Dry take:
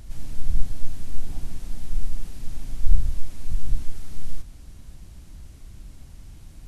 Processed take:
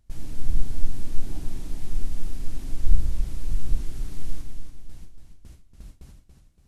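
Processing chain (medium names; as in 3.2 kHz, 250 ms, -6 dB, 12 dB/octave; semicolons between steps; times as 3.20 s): gate with hold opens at -31 dBFS; dynamic bell 330 Hz, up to +6 dB, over -55 dBFS, Q 1.6; modulated delay 284 ms, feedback 44%, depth 58 cents, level -6.5 dB; trim -1 dB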